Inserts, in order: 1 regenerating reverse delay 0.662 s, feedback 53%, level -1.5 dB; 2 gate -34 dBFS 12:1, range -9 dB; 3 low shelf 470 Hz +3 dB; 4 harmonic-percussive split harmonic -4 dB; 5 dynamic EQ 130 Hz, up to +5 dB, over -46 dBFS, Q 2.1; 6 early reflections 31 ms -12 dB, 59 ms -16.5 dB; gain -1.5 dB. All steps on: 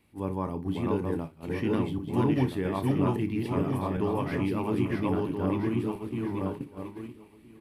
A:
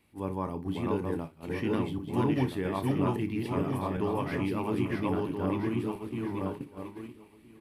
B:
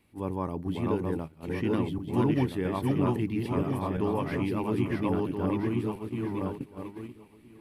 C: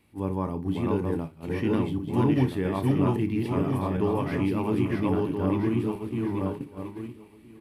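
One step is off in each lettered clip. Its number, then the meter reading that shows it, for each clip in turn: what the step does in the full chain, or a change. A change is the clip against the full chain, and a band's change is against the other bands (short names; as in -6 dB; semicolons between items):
3, 125 Hz band -2.0 dB; 6, echo-to-direct -10.5 dB to none; 4, 125 Hz band +1.5 dB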